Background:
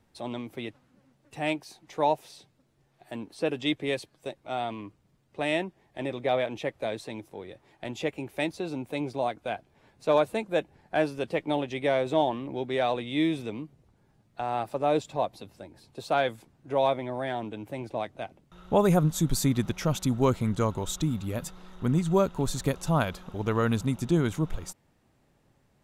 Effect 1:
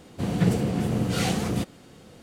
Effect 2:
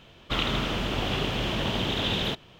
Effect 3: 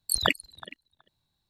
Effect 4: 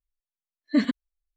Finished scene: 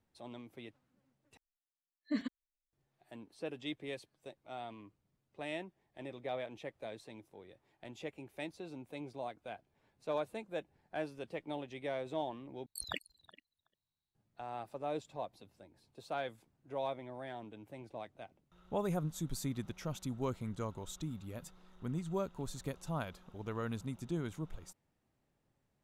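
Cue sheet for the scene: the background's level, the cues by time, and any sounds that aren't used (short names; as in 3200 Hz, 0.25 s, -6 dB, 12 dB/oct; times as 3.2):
background -13.5 dB
1.37 replace with 4 -14 dB
12.66 replace with 3 -17 dB
not used: 1, 2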